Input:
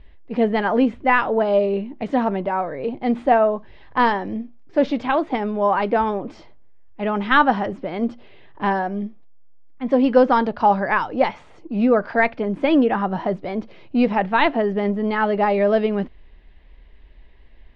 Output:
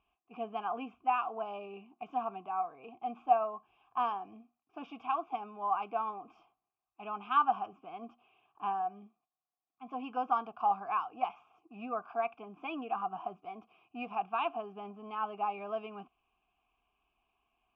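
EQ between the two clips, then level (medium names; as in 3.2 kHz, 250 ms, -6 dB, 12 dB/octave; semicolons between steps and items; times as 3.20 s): vowel filter a; static phaser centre 2.8 kHz, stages 8; 0.0 dB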